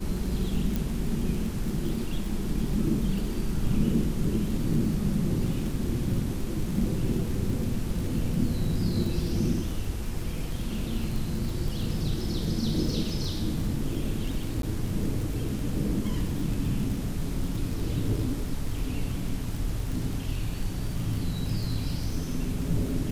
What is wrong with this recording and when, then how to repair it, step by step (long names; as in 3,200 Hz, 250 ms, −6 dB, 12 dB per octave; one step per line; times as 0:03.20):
surface crackle 39 per second −32 dBFS
0:00.76: click
0:14.62–0:14.63: drop-out 12 ms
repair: click removal
repair the gap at 0:14.62, 12 ms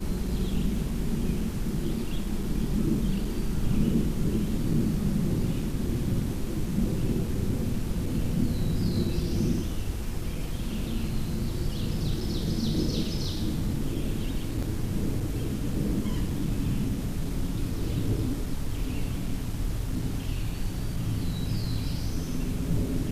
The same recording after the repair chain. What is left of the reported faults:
0:00.76: click